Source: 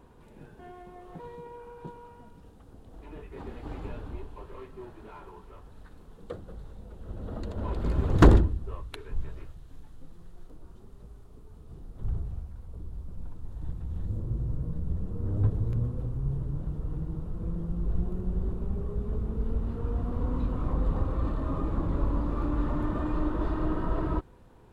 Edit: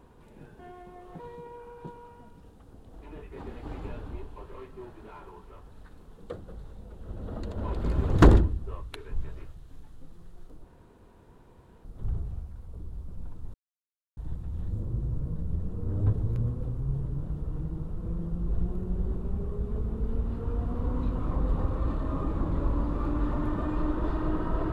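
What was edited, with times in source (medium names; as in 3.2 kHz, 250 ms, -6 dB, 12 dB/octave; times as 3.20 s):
10.64–11.85 s: room tone
13.54 s: insert silence 0.63 s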